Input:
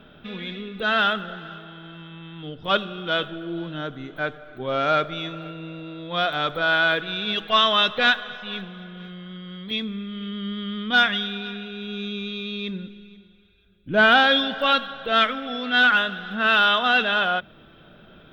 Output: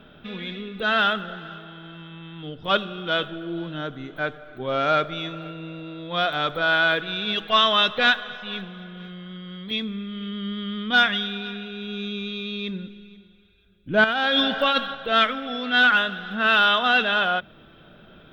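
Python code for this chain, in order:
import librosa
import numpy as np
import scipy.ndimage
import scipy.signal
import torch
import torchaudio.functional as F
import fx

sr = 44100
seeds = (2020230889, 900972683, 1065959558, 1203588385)

y = fx.over_compress(x, sr, threshold_db=-21.0, ratio=-1.0, at=(14.04, 14.95))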